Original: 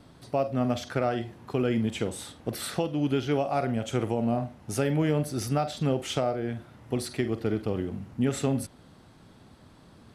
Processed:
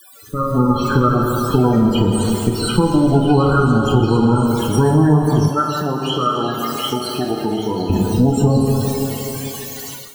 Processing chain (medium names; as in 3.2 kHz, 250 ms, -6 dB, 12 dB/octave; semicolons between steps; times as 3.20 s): comb filter that takes the minimum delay 0.71 ms; gate -49 dBFS, range -29 dB; word length cut 6-bit, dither triangular; loudest bins only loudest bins 16; repeats whose band climbs or falls 741 ms, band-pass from 2.9 kHz, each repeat 0.7 oct, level -3 dB; reverberation RT60 3.5 s, pre-delay 8 ms, DRR 0 dB; compression 3:1, threshold -28 dBFS, peak gain reduction 8 dB; 5.48–7.90 s: high-pass 490 Hz 6 dB/octave; level rider gain up to 13 dB; trim +4 dB